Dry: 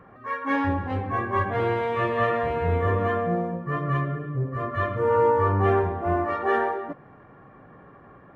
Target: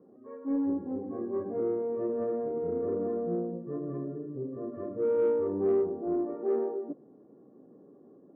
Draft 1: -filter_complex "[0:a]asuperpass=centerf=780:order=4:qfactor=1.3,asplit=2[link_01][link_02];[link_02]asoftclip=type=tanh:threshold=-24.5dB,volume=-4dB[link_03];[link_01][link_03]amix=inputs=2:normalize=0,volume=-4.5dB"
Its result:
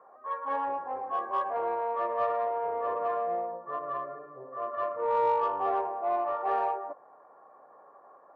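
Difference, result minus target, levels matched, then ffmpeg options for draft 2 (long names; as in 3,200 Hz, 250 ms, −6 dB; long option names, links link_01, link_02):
250 Hz band −17.5 dB
-filter_complex "[0:a]asuperpass=centerf=320:order=4:qfactor=1.3,asplit=2[link_01][link_02];[link_02]asoftclip=type=tanh:threshold=-24.5dB,volume=-4dB[link_03];[link_01][link_03]amix=inputs=2:normalize=0,volume=-4.5dB"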